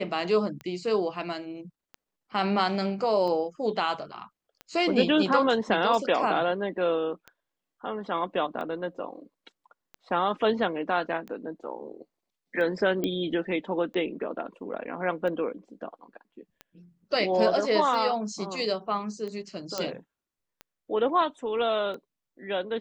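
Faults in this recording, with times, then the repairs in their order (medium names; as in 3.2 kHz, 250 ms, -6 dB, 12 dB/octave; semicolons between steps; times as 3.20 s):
tick 45 rpm -26 dBFS
13.04 s: pop -15 dBFS
19.78 s: pop -15 dBFS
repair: de-click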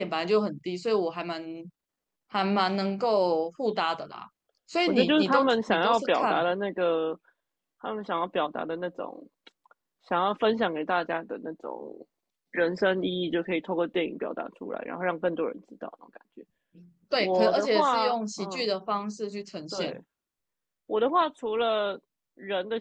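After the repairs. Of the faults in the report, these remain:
nothing left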